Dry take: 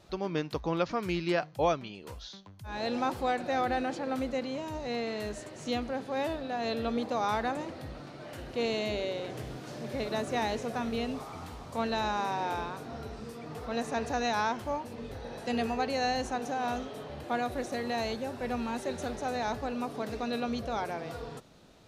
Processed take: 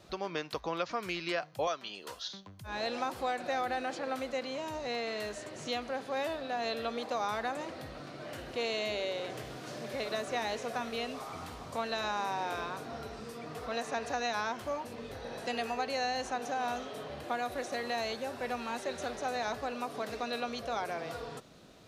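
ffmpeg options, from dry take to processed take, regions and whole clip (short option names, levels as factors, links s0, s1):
-filter_complex "[0:a]asettb=1/sr,asplit=3[s0][s1][s2];[s0]atrim=end=1.674[s3];[s1]atrim=start=1.67:end=2.28,asetpts=PTS-STARTPTS,afade=t=in:d=0.004:c=qsin,afade=t=out:st=0.606:d=0.004:c=qsin,equalizer=f=2300:t=o:w=0.3:g=-8,acontrast=48,highpass=f=1100:p=1[s4];[s2]atrim=start=2.276[s5];[s3][s4]acrossfade=d=0.004:c1=hsin:c2=qsin[s6];[s6][s5]acrossfade=d=0.004:c1=qsin:c2=hsin,lowshelf=f=66:g=-8,bandreject=f=870:w=13,acrossover=split=500|6600[s7][s8][s9];[s7]acompressor=threshold=0.00447:ratio=4[s10];[s8]acompressor=threshold=0.0224:ratio=4[s11];[s9]acompressor=threshold=0.00141:ratio=4[s12];[s10][s11][s12]amix=inputs=3:normalize=0,volume=1.26"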